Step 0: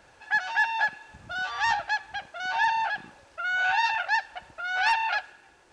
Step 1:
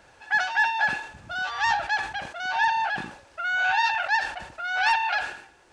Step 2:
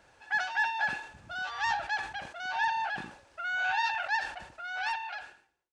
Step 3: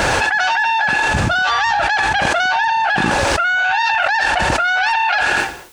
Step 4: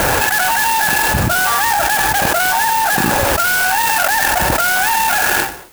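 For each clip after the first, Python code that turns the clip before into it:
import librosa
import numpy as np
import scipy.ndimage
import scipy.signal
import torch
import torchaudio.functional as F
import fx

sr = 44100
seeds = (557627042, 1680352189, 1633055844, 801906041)

y1 = fx.sustainer(x, sr, db_per_s=93.0)
y1 = y1 * librosa.db_to_amplitude(1.5)
y2 = fx.fade_out_tail(y1, sr, length_s=1.37)
y2 = y2 * librosa.db_to_amplitude(-6.5)
y3 = fx.env_flatten(y2, sr, amount_pct=100)
y3 = y3 * librosa.db_to_amplitude(9.0)
y4 = fx.clock_jitter(y3, sr, seeds[0], jitter_ms=0.064)
y4 = y4 * librosa.db_to_amplitude(1.5)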